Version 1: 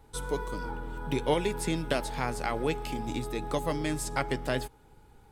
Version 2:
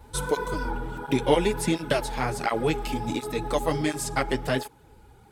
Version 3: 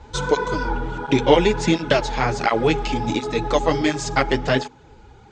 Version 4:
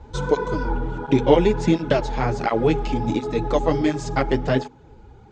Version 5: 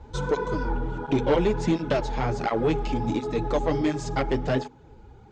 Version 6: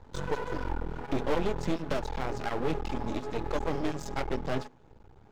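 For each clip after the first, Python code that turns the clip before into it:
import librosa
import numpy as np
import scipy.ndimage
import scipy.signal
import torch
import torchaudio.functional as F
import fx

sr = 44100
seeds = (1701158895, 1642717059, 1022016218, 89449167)

y1 = fx.rider(x, sr, range_db=10, speed_s=2.0)
y1 = fx.flanger_cancel(y1, sr, hz=1.4, depth_ms=7.7)
y1 = y1 * 10.0 ** (7.5 / 20.0)
y2 = scipy.signal.sosfilt(scipy.signal.ellip(4, 1.0, 50, 6900.0, 'lowpass', fs=sr, output='sos'), y1)
y2 = fx.hum_notches(y2, sr, base_hz=50, count=5)
y2 = y2 * 10.0 ** (7.5 / 20.0)
y3 = fx.tilt_shelf(y2, sr, db=5.0, hz=970.0)
y3 = y3 * 10.0 ** (-3.5 / 20.0)
y4 = 10.0 ** (-12.5 / 20.0) * np.tanh(y3 / 10.0 ** (-12.5 / 20.0))
y4 = y4 * 10.0 ** (-2.5 / 20.0)
y5 = np.maximum(y4, 0.0)
y5 = fx.hum_notches(y5, sr, base_hz=60, count=2)
y5 = y5 * 10.0 ** (-2.5 / 20.0)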